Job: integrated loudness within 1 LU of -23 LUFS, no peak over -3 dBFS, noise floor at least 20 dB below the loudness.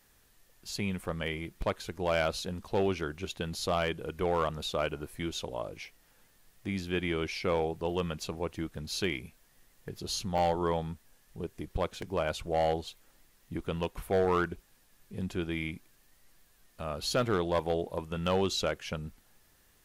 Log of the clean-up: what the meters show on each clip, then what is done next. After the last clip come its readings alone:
clipped samples 0.3%; clipping level -20.5 dBFS; dropouts 3; longest dropout 2.7 ms; loudness -33.0 LUFS; peak level -20.5 dBFS; loudness target -23.0 LUFS
-> clip repair -20.5 dBFS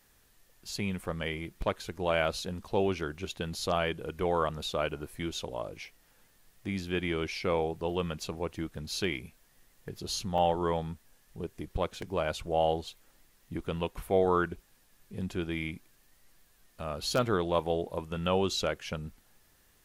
clipped samples 0.0%; dropouts 3; longest dropout 2.7 ms
-> interpolate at 1.62/10.38/12.02 s, 2.7 ms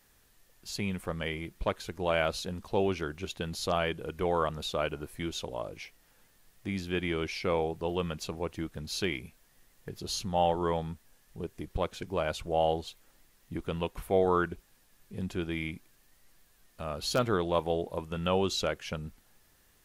dropouts 0; loudness -32.5 LUFS; peak level -13.5 dBFS; loudness target -23.0 LUFS
-> trim +9.5 dB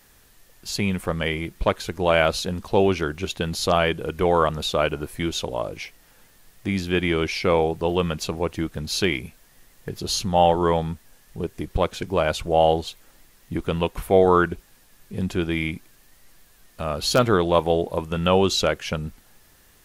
loudness -23.0 LUFS; peak level -4.0 dBFS; noise floor -56 dBFS

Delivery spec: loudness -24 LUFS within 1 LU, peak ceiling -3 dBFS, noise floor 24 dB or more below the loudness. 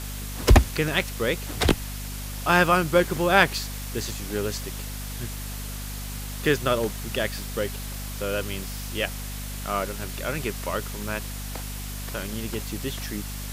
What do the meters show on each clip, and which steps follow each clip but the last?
hum 50 Hz; highest harmonic 250 Hz; hum level -32 dBFS; noise floor -34 dBFS; noise floor target -51 dBFS; loudness -26.5 LUFS; peak level -2.5 dBFS; loudness target -24.0 LUFS
-> hum notches 50/100/150/200/250 Hz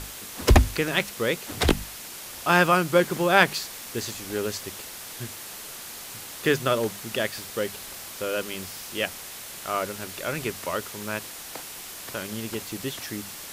hum not found; noise floor -40 dBFS; noise floor target -51 dBFS
-> noise reduction 11 dB, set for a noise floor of -40 dBFS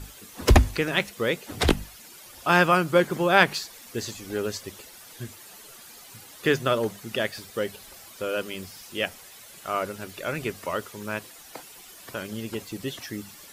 noise floor -47 dBFS; noise floor target -50 dBFS
-> noise reduction 6 dB, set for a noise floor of -47 dBFS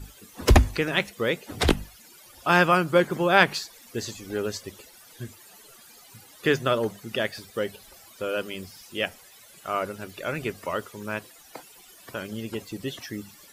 noise floor -51 dBFS; loudness -26.0 LUFS; peak level -3.0 dBFS; loudness target -24.0 LUFS
-> trim +2 dB; peak limiter -3 dBFS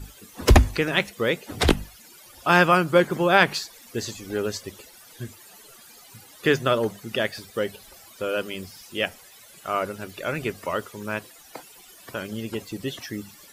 loudness -24.5 LUFS; peak level -3.0 dBFS; noise floor -49 dBFS

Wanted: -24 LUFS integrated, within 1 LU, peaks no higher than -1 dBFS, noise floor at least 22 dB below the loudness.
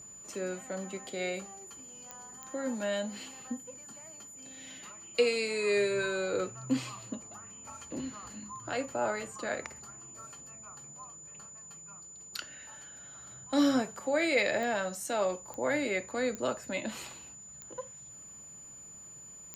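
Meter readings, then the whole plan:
clicks found 7; steady tone 7 kHz; tone level -47 dBFS; loudness -33.0 LUFS; peak level -15.5 dBFS; loudness target -24.0 LUFS
-> de-click; band-stop 7 kHz, Q 30; trim +9 dB

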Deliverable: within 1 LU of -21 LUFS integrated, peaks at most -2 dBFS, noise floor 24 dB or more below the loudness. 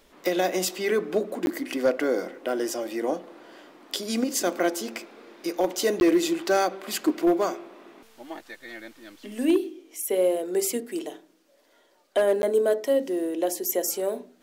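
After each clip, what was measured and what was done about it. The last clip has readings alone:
clipped samples 0.3%; clipping level -14.0 dBFS; dropouts 3; longest dropout 11 ms; loudness -26.0 LUFS; peak level -14.0 dBFS; loudness target -21.0 LUFS
-> clip repair -14 dBFS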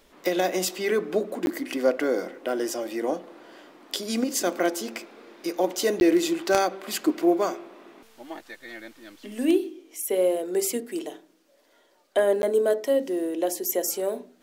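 clipped samples 0.0%; dropouts 3; longest dropout 11 ms
-> interpolate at 1.46/6.00/12.42 s, 11 ms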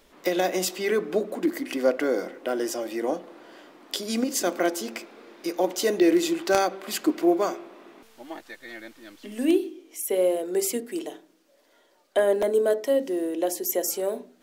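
dropouts 0; loudness -26.0 LUFS; peak level -5.0 dBFS; loudness target -21.0 LUFS
-> trim +5 dB; peak limiter -2 dBFS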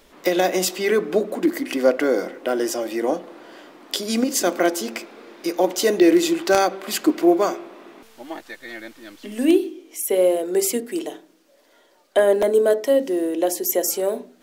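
loudness -21.0 LUFS; peak level -2.0 dBFS; noise floor -57 dBFS

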